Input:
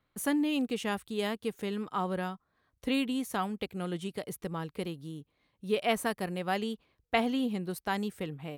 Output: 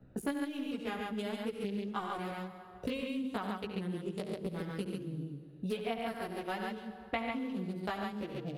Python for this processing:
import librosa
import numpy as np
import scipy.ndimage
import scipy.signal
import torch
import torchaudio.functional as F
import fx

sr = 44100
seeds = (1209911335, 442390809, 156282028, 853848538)

y = fx.wiener(x, sr, points=41)
y = fx.transient(y, sr, attack_db=6, sustain_db=1)
y = fx.chorus_voices(y, sr, voices=2, hz=0.59, base_ms=16, depth_ms=2.0, mix_pct=60)
y = fx.echo_multitap(y, sr, ms=(69, 95, 138), db=(-10.5, -9.5, -3.5))
y = fx.rev_plate(y, sr, seeds[0], rt60_s=1.1, hf_ratio=0.75, predelay_ms=95, drr_db=15.5)
y = fx.band_squash(y, sr, depth_pct=100)
y = F.gain(torch.from_numpy(y), -6.0).numpy()